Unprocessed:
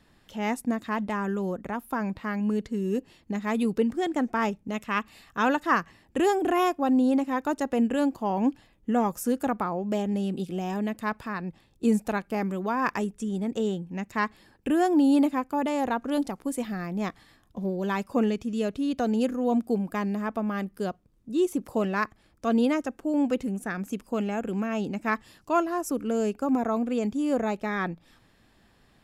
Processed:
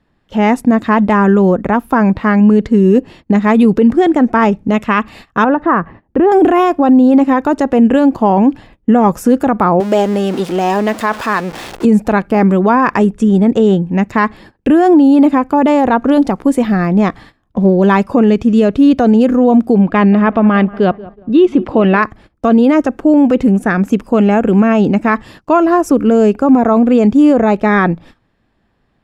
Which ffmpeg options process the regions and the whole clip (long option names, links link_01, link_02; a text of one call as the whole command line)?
ffmpeg -i in.wav -filter_complex "[0:a]asettb=1/sr,asplit=3[link_01][link_02][link_03];[link_01]atrim=end=5.444[link_04];[link_02]atrim=start=5.44:end=6.32,asetpts=PTS-STARTPTS,afade=type=in:duration=0.004:curve=qsin,afade=type=out:start_time=0.876:duration=0.004:curve=qsin,lowpass=1400,acompressor=threshold=-28dB:ratio=2.5:attack=3.2:release=140:knee=1:detection=peak[link_05];[link_03]atrim=start=6.316[link_06];[link_04][link_05]acrossfade=duration=0.004:curve1=hsin:curve2=qsin[link_07];[link_07][link_06]acrossfade=duration=0.004:curve1=qsin:curve2=hsin,asettb=1/sr,asplit=3[link_08][link_09][link_10];[link_08]atrim=end=9.804[link_11];[link_09]atrim=start=9.8:end=11.85,asetpts=PTS-STARTPTS,afade=type=in:duration=0.004:curve=qsin,afade=type=out:start_time=2.046:duration=0.004:curve=qsin,aeval=exprs='val(0)+0.5*0.0133*sgn(val(0))':channel_layout=same,bass=frequency=250:gain=-15,treble=frequency=4000:gain=6[link_12];[link_10]atrim=start=11.846[link_13];[link_11][link_12]acrossfade=duration=0.004:curve1=hsin:curve2=qsin[link_14];[link_14][link_13]acrossfade=duration=0.004:curve1=qsin:curve2=hsin,asettb=1/sr,asplit=3[link_15][link_16][link_17];[link_15]atrim=end=19.814[link_18];[link_16]atrim=start=19.81:end=22.03,asetpts=PTS-STARTPTS,afade=type=in:duration=0.004:curve=qsin,afade=type=out:start_time=2.216:duration=0.004:curve=qsin,lowpass=frequency=3200:width_type=q:width=1.7,asplit=2[link_19][link_20];[link_20]adelay=182,lowpass=frequency=1600:poles=1,volume=-20dB,asplit=2[link_21][link_22];[link_22]adelay=182,lowpass=frequency=1600:poles=1,volume=0.51,asplit=2[link_23][link_24];[link_24]adelay=182,lowpass=frequency=1600:poles=1,volume=0.51,asplit=2[link_25][link_26];[link_26]adelay=182,lowpass=frequency=1600:poles=1,volume=0.51[link_27];[link_19][link_21][link_23][link_25][link_27]amix=inputs=5:normalize=0,atrim=end_sample=97902[link_28];[link_17]atrim=start=22.026[link_29];[link_18][link_28]acrossfade=duration=0.004:curve1=hsin:curve2=qsin[link_30];[link_30][link_29]acrossfade=duration=0.004:curve1=qsin:curve2=hsin,lowpass=frequency=1700:poles=1,agate=range=-19dB:threshold=-53dB:ratio=16:detection=peak,alimiter=level_in=21dB:limit=-1dB:release=50:level=0:latency=1,volume=-1dB" out.wav